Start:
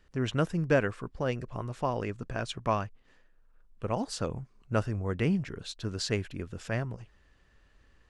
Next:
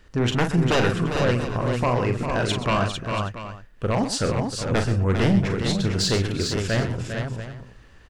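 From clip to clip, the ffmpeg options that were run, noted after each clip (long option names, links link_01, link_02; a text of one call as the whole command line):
ffmpeg -i in.wav -filter_complex "[0:a]aeval=exprs='0.251*sin(PI/2*3.55*val(0)/0.251)':channel_layout=same,asplit=2[link_01][link_02];[link_02]aecho=0:1:41|127|401|450|685|773:0.447|0.237|0.398|0.531|0.224|0.1[link_03];[link_01][link_03]amix=inputs=2:normalize=0,volume=-4.5dB" out.wav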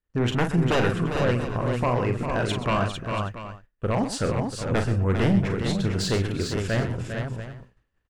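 ffmpeg -i in.wav -af "equalizer=frequency=5200:width=0.97:gain=-5.5,agate=range=-33dB:threshold=-34dB:ratio=3:detection=peak,volume=-1.5dB" out.wav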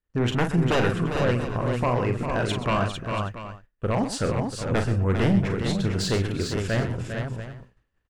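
ffmpeg -i in.wav -af anull out.wav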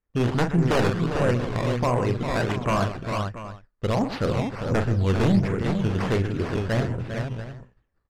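ffmpeg -i in.wav -af "acrusher=samples=10:mix=1:aa=0.000001:lfo=1:lforange=10:lforate=1.4,adynamicsmooth=sensitivity=1:basefreq=3800,volume=1dB" out.wav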